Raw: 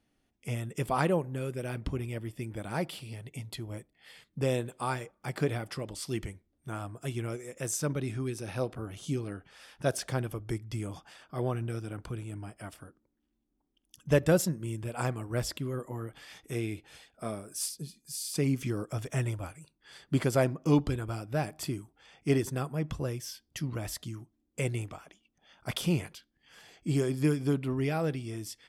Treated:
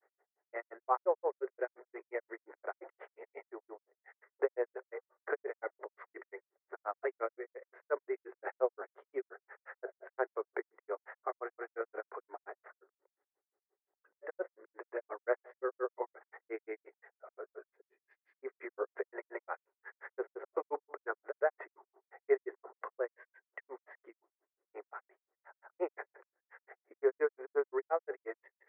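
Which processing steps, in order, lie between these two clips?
Chebyshev band-pass filter 390–2,000 Hz, order 5
downward compressor 2 to 1, threshold −40 dBFS, peak gain reduction 10.5 dB
granular cloud 100 ms, grains 5.7 per second, pitch spread up and down by 0 semitones
level +11 dB

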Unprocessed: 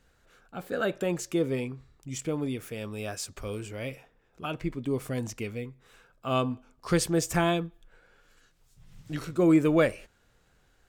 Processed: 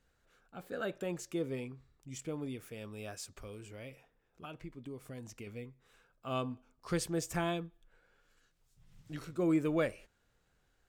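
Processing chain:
0:03.42–0:05.47: downward compressor 2.5 to 1, threshold −36 dBFS, peak gain reduction 8 dB
level −9 dB

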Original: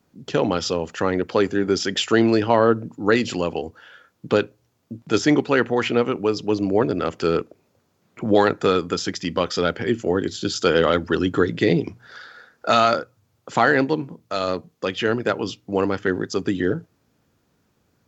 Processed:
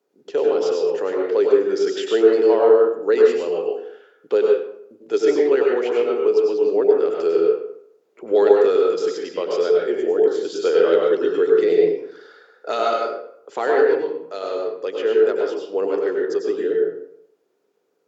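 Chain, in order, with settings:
high-pass with resonance 420 Hz, resonance Q 4.9
convolution reverb RT60 0.70 s, pre-delay 91 ms, DRR −1 dB
level −10.5 dB

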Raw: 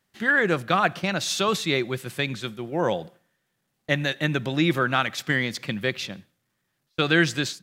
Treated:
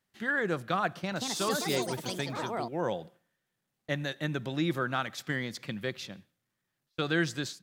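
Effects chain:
0:00.90–0:02.99: delay with pitch and tempo change per echo 217 ms, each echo +5 semitones, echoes 3
dynamic equaliser 2,500 Hz, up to −6 dB, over −37 dBFS, Q 1.7
level −7.5 dB

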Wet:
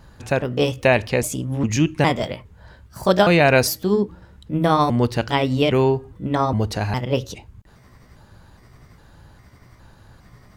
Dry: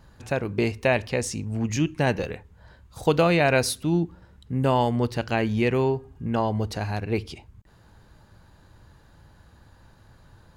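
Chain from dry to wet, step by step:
pitch shifter gated in a rhythm +3.5 semitones, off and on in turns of 408 ms
level +5.5 dB

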